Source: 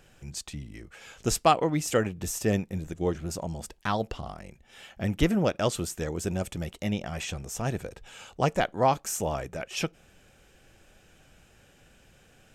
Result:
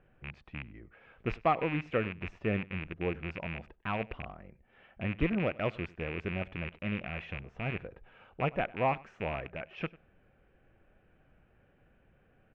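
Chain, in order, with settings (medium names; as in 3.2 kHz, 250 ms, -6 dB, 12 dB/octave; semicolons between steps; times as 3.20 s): rattle on loud lows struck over -35 dBFS, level -18 dBFS; low-pass 2.5 kHz 24 dB/octave; band-stop 850 Hz, Q 22; delay 97 ms -22 dB; tape noise reduction on one side only decoder only; trim -6 dB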